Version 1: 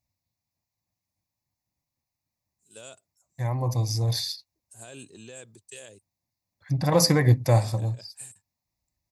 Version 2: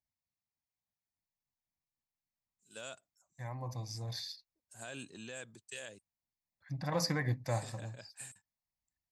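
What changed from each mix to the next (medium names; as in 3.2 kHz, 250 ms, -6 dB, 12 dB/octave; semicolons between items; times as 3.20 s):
second voice -11.5 dB; master: add fifteen-band graphic EQ 100 Hz -7 dB, 400 Hz -6 dB, 1.6 kHz +5 dB, 10 kHz -10 dB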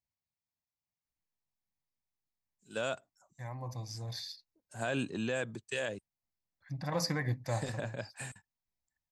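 first voice: remove pre-emphasis filter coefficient 0.8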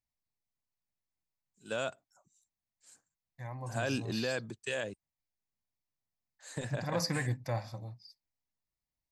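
first voice: entry -1.05 s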